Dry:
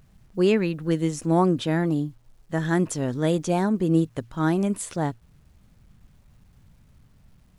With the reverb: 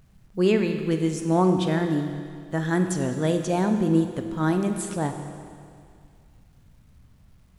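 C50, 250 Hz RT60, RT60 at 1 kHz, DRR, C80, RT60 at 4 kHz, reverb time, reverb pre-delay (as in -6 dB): 7.0 dB, 2.2 s, 2.2 s, 6.0 dB, 8.0 dB, 2.1 s, 2.2 s, 27 ms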